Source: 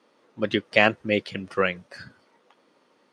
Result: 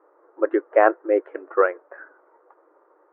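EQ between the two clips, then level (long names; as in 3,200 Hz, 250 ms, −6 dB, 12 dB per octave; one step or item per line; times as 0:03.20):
linear-phase brick-wall high-pass 300 Hz
Butterworth low-pass 1,500 Hz 36 dB per octave
+6.0 dB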